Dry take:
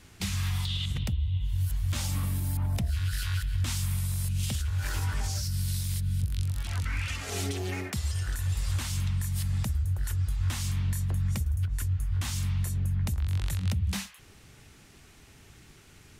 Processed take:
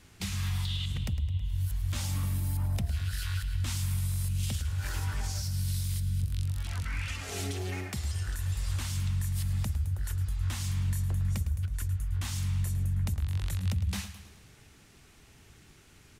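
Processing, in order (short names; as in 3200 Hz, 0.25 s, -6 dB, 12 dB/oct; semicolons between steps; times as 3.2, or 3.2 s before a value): feedback echo 0.107 s, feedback 55%, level -13 dB; gain -3 dB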